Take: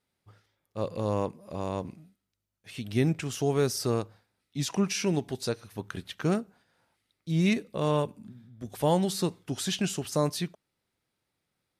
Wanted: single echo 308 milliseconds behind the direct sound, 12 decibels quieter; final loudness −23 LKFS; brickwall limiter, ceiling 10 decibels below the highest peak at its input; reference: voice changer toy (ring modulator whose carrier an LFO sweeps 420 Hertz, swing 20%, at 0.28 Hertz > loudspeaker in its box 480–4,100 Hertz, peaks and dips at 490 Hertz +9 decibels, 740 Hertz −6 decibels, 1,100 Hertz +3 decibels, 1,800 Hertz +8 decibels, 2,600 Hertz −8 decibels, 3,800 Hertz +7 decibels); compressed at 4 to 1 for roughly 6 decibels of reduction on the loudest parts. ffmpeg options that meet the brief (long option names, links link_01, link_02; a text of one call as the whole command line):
ffmpeg -i in.wav -af "acompressor=threshold=-27dB:ratio=4,alimiter=level_in=4dB:limit=-24dB:level=0:latency=1,volume=-4dB,aecho=1:1:308:0.251,aeval=exprs='val(0)*sin(2*PI*420*n/s+420*0.2/0.28*sin(2*PI*0.28*n/s))':channel_layout=same,highpass=480,equalizer=frequency=490:width_type=q:width=4:gain=9,equalizer=frequency=740:width_type=q:width=4:gain=-6,equalizer=frequency=1100:width_type=q:width=4:gain=3,equalizer=frequency=1800:width_type=q:width=4:gain=8,equalizer=frequency=2600:width_type=q:width=4:gain=-8,equalizer=frequency=3800:width_type=q:width=4:gain=7,lowpass=frequency=4100:width=0.5412,lowpass=frequency=4100:width=1.3066,volume=20.5dB" out.wav